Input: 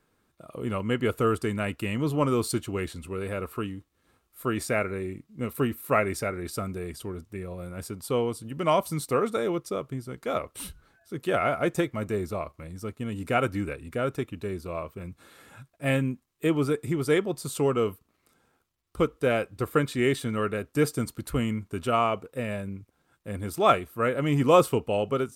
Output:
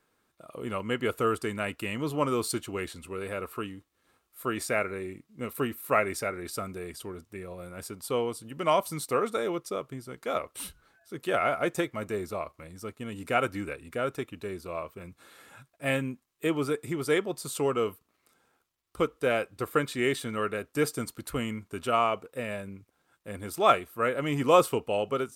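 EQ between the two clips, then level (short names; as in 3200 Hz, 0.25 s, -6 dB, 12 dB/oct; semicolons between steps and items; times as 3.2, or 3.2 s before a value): low shelf 260 Hz -9.5 dB; 0.0 dB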